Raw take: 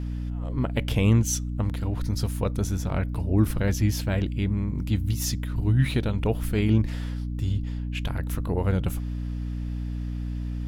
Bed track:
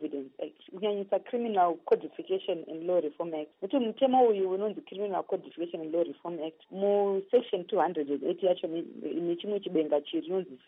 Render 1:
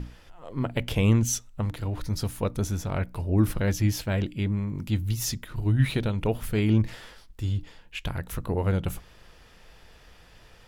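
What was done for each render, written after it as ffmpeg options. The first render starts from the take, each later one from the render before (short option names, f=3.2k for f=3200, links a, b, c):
-af "bandreject=f=60:t=h:w=6,bandreject=f=120:t=h:w=6,bandreject=f=180:t=h:w=6,bandreject=f=240:t=h:w=6,bandreject=f=300:t=h:w=6"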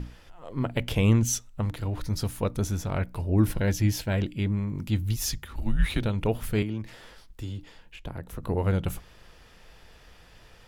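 -filter_complex "[0:a]asettb=1/sr,asplit=3[a][b][c];[a]atrim=end=3.454[d];[b]atrim=start=3.45:end=4.13,asetpts=PTS-STARTPTS,afade=t=in:d=0.004:c=qsin,afade=t=out:st=0.676:d=0.004:c=qsin,asuperstop=centerf=1200:order=4:qfactor=6[e];[c]atrim=start=4.126[f];[d][e]acrossfade=d=0.004:c1=hsin:c2=qsin[g];[g][f]acrossfade=d=0.004:c1=qsin:c2=hsin,asettb=1/sr,asplit=3[h][i][j];[h]atrim=end=5.164[k];[i]atrim=start=5.16:end=6.02,asetpts=PTS-STARTPTS,afade=t=in:d=0.004:c=qsin,afade=t=out:st=0.856:d=0.004:c=qsin,afreqshift=-91[l];[j]atrim=start=6.016[m];[k][l]acrossfade=d=0.004:c1=hsin:c2=qsin[n];[n][m]acrossfade=d=0.004:c1=qsin:c2=hsin,asettb=1/sr,asplit=3[o][p][q];[o]atrim=end=6.624[r];[p]atrim=start=6.62:end=8.43,asetpts=PTS-STARTPTS,afade=t=in:d=0.004:c=qsin,afade=t=out:st=1.806:d=0.004:c=qsin,acrossover=split=200|880[s][t][u];[s]acompressor=threshold=-37dB:ratio=4[v];[t]acompressor=threshold=-35dB:ratio=4[w];[u]acompressor=threshold=-48dB:ratio=4[x];[v][w][x]amix=inputs=3:normalize=0[y];[q]atrim=start=8.426[z];[r][y]acrossfade=d=0.004:c1=hsin:c2=qsin[aa];[aa][z]acrossfade=d=0.004:c1=qsin:c2=hsin"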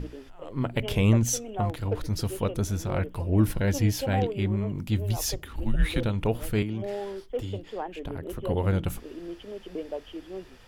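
-filter_complex "[1:a]volume=-7.5dB[a];[0:a][a]amix=inputs=2:normalize=0"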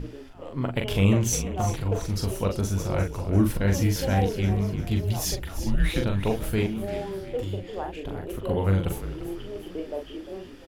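-filter_complex "[0:a]asplit=2[a][b];[b]adelay=41,volume=-4.5dB[c];[a][c]amix=inputs=2:normalize=0,asplit=6[d][e][f][g][h][i];[e]adelay=347,afreqshift=-36,volume=-12dB[j];[f]adelay=694,afreqshift=-72,volume=-18dB[k];[g]adelay=1041,afreqshift=-108,volume=-24dB[l];[h]adelay=1388,afreqshift=-144,volume=-30.1dB[m];[i]adelay=1735,afreqshift=-180,volume=-36.1dB[n];[d][j][k][l][m][n]amix=inputs=6:normalize=0"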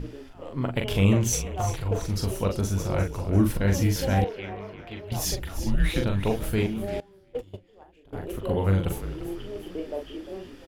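-filter_complex "[0:a]asettb=1/sr,asplit=3[a][b][c];[a]atrim=end=1.324[d];[b]atrim=start=1.32:end=1.91,asetpts=PTS-STARTPTS,afade=t=in:d=0.004:c=qsin,afade=t=out:st=0.586:d=0.004:c=qsin,equalizer=f=230:w=1.5:g=-10[e];[c]atrim=start=1.906[f];[d][e]acrossfade=d=0.004:c1=hsin:c2=qsin[g];[g][f]acrossfade=d=0.004:c1=qsin:c2=hsin,asettb=1/sr,asplit=3[h][i][j];[h]atrim=end=4.244[k];[i]atrim=start=4.24:end=5.12,asetpts=PTS-STARTPTS,afade=t=in:d=0.004:c=qsin,afade=t=out:st=0.876:d=0.004:c=qsin,acrossover=split=420 3300:gain=0.126 1 0.0708[l][m][n];[l][m][n]amix=inputs=3:normalize=0[o];[j]atrim=start=5.116[p];[k][o]acrossfade=d=0.004:c1=hsin:c2=qsin[q];[q][p]acrossfade=d=0.004:c1=qsin:c2=hsin,asettb=1/sr,asplit=3[r][s][t];[r]atrim=end=7.004[u];[s]atrim=start=7:end=8.13,asetpts=PTS-STARTPTS,afade=t=in:d=0.004:c=qsin,afade=t=out:st=1.126:d=0.004:c=qsin,agate=range=-21dB:threshold=-28dB:ratio=16:release=100:detection=peak[v];[t]atrim=start=8.126[w];[u][v]acrossfade=d=0.004:c1=hsin:c2=qsin[x];[x][w]acrossfade=d=0.004:c1=qsin:c2=hsin"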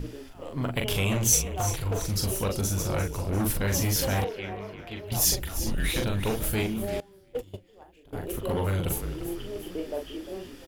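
-filter_complex "[0:a]acrossover=split=1100[a][b];[a]asoftclip=type=hard:threshold=-24dB[c];[b]crystalizer=i=1.5:c=0[d];[c][d]amix=inputs=2:normalize=0"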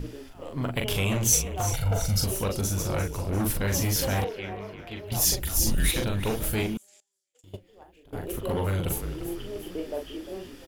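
-filter_complex "[0:a]asettb=1/sr,asplit=3[a][b][c];[a]atrim=end=1.724[d];[b]atrim=start=1.72:end=2.24,asetpts=PTS-STARTPTS,afade=t=in:d=0.004:c=qsin,afade=t=out:st=0.516:d=0.004:c=qsin,aecho=1:1:1.4:0.81,atrim=end_sample=22932[e];[c]atrim=start=2.236[f];[d][e]acrossfade=d=0.004:c1=hsin:c2=qsin[g];[g][f]acrossfade=d=0.004:c1=qsin:c2=hsin,asplit=3[h][i][j];[h]afade=t=out:st=5.43:d=0.02[k];[i]bass=f=250:g=4,treble=f=4k:g=10,afade=t=in:st=5.43:d=0.02,afade=t=out:st=5.9:d=0.02[l];[j]afade=t=in:st=5.9:d=0.02[m];[k][l][m]amix=inputs=3:normalize=0,asettb=1/sr,asplit=3[n][o][p];[n]atrim=end=6.774[q];[o]atrim=start=6.77:end=7.44,asetpts=PTS-STARTPTS,afade=t=in:d=0.004:c=qsin,afade=t=out:st=0.666:d=0.004:c=qsin,bandpass=f=7.2k:t=q:w=5.4[r];[p]atrim=start=7.436[s];[q][r]acrossfade=d=0.004:c1=hsin:c2=qsin[t];[t][s]acrossfade=d=0.004:c1=qsin:c2=hsin"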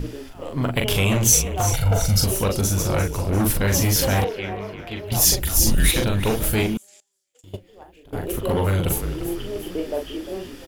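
-af "volume=6.5dB,alimiter=limit=-3dB:level=0:latency=1"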